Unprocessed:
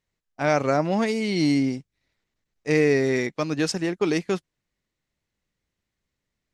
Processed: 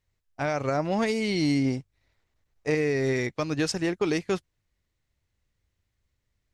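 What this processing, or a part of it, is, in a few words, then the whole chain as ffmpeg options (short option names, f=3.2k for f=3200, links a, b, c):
car stereo with a boomy subwoofer: -filter_complex "[0:a]lowshelf=f=130:t=q:w=1.5:g=8,alimiter=limit=-16.5dB:level=0:latency=1:release=239,asettb=1/sr,asplit=3[a][b][c];[a]atrim=end=1.654[d];[b]atrim=start=1.65:end=2.75,asetpts=PTS-STARTPTS,afade=t=in:d=0.004:c=qsin,afade=t=out:st=1.096:d=0.004:c=qsin,equalizer=f=770:t=o:w=2.1:g=5.5[e];[c]atrim=start=2.746[f];[d][e]acrossfade=d=0.004:c1=hsin:c2=qsin[g];[g][f]acrossfade=d=0.004:c1=qsin:c2=hsin"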